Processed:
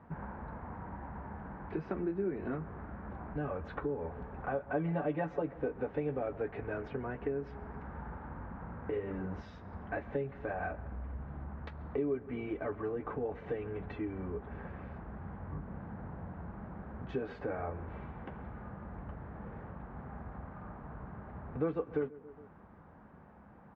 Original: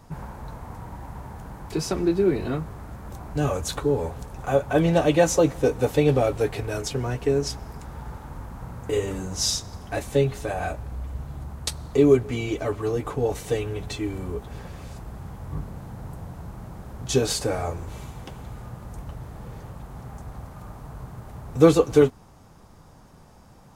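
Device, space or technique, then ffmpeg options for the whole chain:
bass amplifier: -filter_complex "[0:a]asettb=1/sr,asplit=3[a][b][c];[a]atrim=end=4.734[d];[b]atrim=start=4.73:end=5.42,asetpts=PTS-STARTPTS,afade=t=in:d=0.004:c=qsin,afade=t=out:st=0.686:d=0.004:c=qsin,aecho=1:1:6.9:0.76,atrim=end_sample=30429[e];[c]atrim=start=5.416[f];[d][e]acrossfade=d=0.004:c1=hsin:c2=qsin[g];[g][f]acrossfade=d=0.004:c1=qsin:c2=hsin,asplit=2[h][i];[i]adelay=137,lowpass=f=2k:p=1,volume=-22dB,asplit=2[j][k];[k]adelay=137,lowpass=f=2k:p=1,volume=0.46,asplit=2[l][m];[m]adelay=137,lowpass=f=2k:p=1,volume=0.46[n];[h][j][l][n]amix=inputs=4:normalize=0,acompressor=threshold=-30dB:ratio=3,highpass=61,equalizer=f=120:t=q:w=4:g=-9,equalizer=f=210:t=q:w=4:g=4,equalizer=f=1.6k:t=q:w=4:g=4,lowpass=f=2.1k:w=0.5412,lowpass=f=2.1k:w=1.3066,volume=-4.5dB"

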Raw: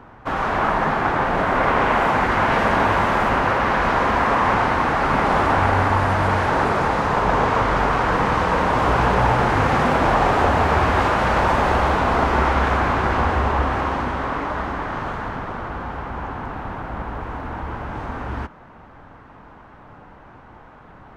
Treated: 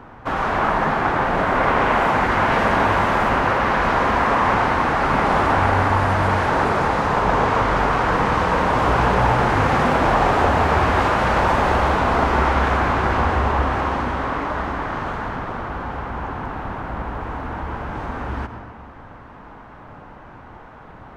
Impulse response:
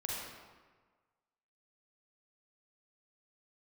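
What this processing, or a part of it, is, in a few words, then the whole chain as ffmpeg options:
ducked reverb: -filter_complex "[0:a]asplit=3[a][b][c];[1:a]atrim=start_sample=2205[d];[b][d]afir=irnorm=-1:irlink=0[e];[c]apad=whole_len=933389[f];[e][f]sidechaincompress=threshold=-36dB:ratio=8:attack=40:release=116,volume=-6dB[g];[a][g]amix=inputs=2:normalize=0"

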